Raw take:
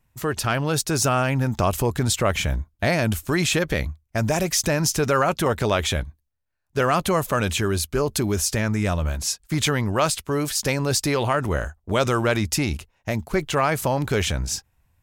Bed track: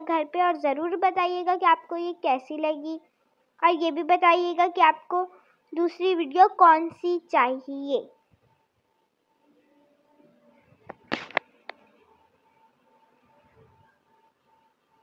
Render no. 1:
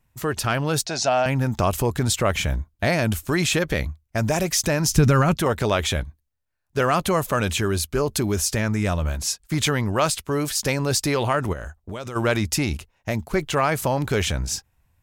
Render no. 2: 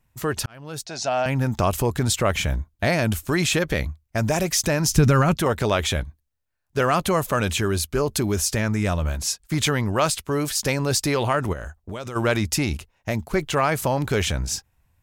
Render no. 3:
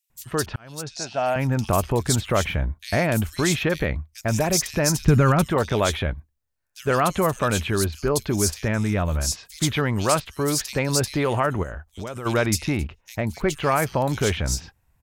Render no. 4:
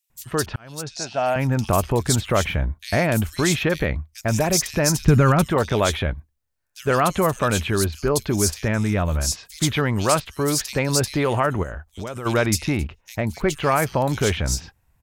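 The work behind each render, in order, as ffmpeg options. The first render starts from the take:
-filter_complex "[0:a]asettb=1/sr,asplit=3[a][b][c];[a]atrim=end=0.864[d];[b]atrim=start=0.86:end=1.26,asetpts=PTS-STARTPTS,afade=t=in:d=0.004:c=qsin,afade=t=out:st=0.396:d=0.004:c=qsin,highpass=250,equalizer=f=300:t=q:w=4:g=-7,equalizer=f=420:t=q:w=4:g=-9,equalizer=f=690:t=q:w=4:g=10,equalizer=f=1.2k:t=q:w=4:g=-9,equalizer=f=4.2k:t=q:w=4:g=6,lowpass=f=6.3k:w=0.5412,lowpass=f=6.3k:w=1.3066[e];[c]atrim=start=1.256[f];[d][e]acrossfade=d=0.004:c1=hsin:c2=qsin[g];[g][f]acrossfade=d=0.004:c1=qsin:c2=hsin,asplit=3[h][i][j];[h]afade=t=out:st=4.88:d=0.02[k];[i]asubboost=boost=5:cutoff=240,afade=t=in:st=4.88:d=0.02,afade=t=out:st=5.36:d=0.02[l];[j]afade=t=in:st=5.36:d=0.02[m];[k][l][m]amix=inputs=3:normalize=0,asplit=3[n][o][p];[n]afade=t=out:st=11.52:d=0.02[q];[o]acompressor=threshold=-29dB:ratio=6:attack=3.2:release=140:knee=1:detection=peak,afade=t=in:st=11.52:d=0.02,afade=t=out:st=12.15:d=0.02[r];[p]afade=t=in:st=12.15:d=0.02[s];[q][r][s]amix=inputs=3:normalize=0"
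-filter_complex "[0:a]asplit=2[a][b];[a]atrim=end=0.46,asetpts=PTS-STARTPTS,afade=t=out:st=0.456:d=0.004:c=hsin[c];[b]atrim=start=0.46,asetpts=PTS-STARTPTS,afade=t=in:d=0.96[d];[c][d]concat=n=2:v=0:a=1"
-filter_complex "[0:a]acrossover=split=3200[a][b];[a]adelay=100[c];[c][b]amix=inputs=2:normalize=0"
-af "volume=1.5dB"

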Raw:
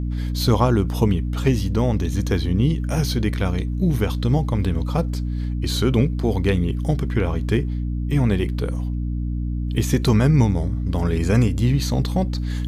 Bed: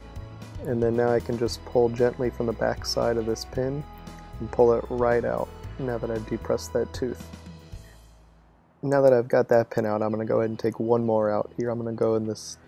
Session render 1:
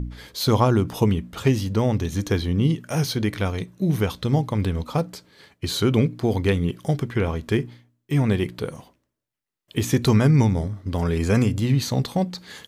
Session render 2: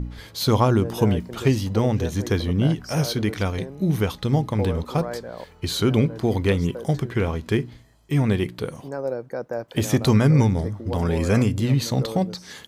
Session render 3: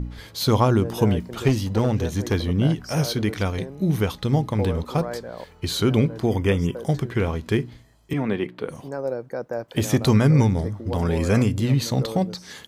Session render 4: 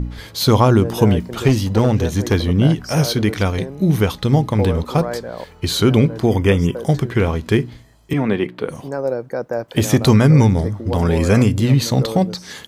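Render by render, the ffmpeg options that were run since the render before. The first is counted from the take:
-af "bandreject=f=60:t=h:w=4,bandreject=f=120:t=h:w=4,bandreject=f=180:t=h:w=4,bandreject=f=240:t=h:w=4,bandreject=f=300:t=h:w=4"
-filter_complex "[1:a]volume=-9.5dB[a];[0:a][a]amix=inputs=2:normalize=0"
-filter_complex "[0:a]asettb=1/sr,asplit=3[a][b][c];[a]atrim=end=1.484[d];[b]atrim=start=1.48:end=2.34,asetpts=PTS-STARTPTS,afade=t=in:d=0.004:c=qsin,afade=t=out:st=0.856:d=0.004:c=qsin,aeval=exprs='clip(val(0),-1,0.133)':c=same[e];[c]atrim=start=2.336[f];[d][e]acrossfade=d=0.004:c1=hsin:c2=qsin[g];[g][f]acrossfade=d=0.004:c1=qsin:c2=hsin,asettb=1/sr,asplit=3[h][i][j];[h]atrim=end=6.264[k];[i]atrim=start=6.26:end=6.76,asetpts=PTS-STARTPTS,afade=t=in:d=0.004:c=qsin,afade=t=out:st=0.496:d=0.004:c=qsin,asuperstop=centerf=4100:order=12:qfactor=3.9[l];[j]atrim=start=6.756[m];[k][l]acrossfade=d=0.004:c1=hsin:c2=qsin[n];[n][m]acrossfade=d=0.004:c1=qsin:c2=hsin,asettb=1/sr,asplit=3[o][p][q];[o]atrim=end=8.134[r];[p]atrim=start=8.13:end=8.69,asetpts=PTS-STARTPTS,afade=t=in:d=0.004:c=qsin,afade=t=out:st=0.556:d=0.004:c=qsin,acrossover=split=180 3300:gain=0.141 1 0.158[s][t][u];[s][t][u]amix=inputs=3:normalize=0[v];[q]atrim=start=8.686[w];[r][v]acrossfade=d=0.004:c1=hsin:c2=qsin[x];[x][w]acrossfade=d=0.004:c1=qsin:c2=hsin"
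-af "volume=6dB,alimiter=limit=-2dB:level=0:latency=1"

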